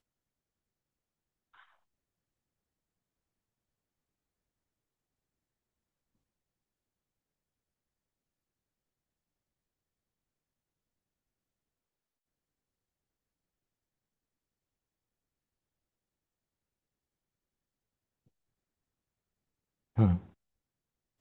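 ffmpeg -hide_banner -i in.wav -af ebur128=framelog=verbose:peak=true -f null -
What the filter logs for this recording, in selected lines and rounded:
Integrated loudness:
  I:         -30.3 LUFS
  Threshold: -43.3 LUFS
Loudness range:
  LRA:        10.2 LU
  Threshold: -57.6 LUFS
  LRA low:   -47.4 LUFS
  LRA high:  -37.2 LUFS
True peak:
  Peak:      -12.5 dBFS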